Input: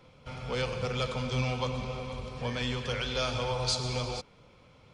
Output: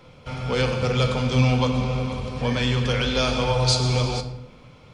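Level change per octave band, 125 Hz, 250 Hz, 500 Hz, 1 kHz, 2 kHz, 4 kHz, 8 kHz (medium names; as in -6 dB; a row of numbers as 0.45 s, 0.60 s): +12.0 dB, +12.5 dB, +9.0 dB, +8.5 dB, +8.0 dB, +8.0 dB, +8.0 dB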